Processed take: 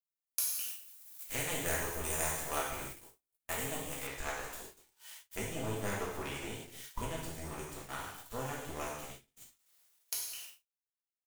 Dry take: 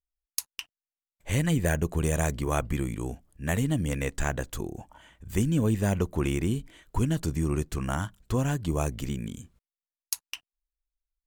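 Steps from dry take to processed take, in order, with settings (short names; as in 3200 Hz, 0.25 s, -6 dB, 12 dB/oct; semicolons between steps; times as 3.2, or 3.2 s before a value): switching spikes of -23.5 dBFS; power-law curve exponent 2; bell 160 Hz -12 dB 1.9 oct; non-linear reverb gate 0.34 s falling, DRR -6 dB; AGC gain up to 5 dB; gate -38 dBFS, range -44 dB; high shelf 7600 Hz +5 dB, from 4.07 s -5.5 dB; gain -7 dB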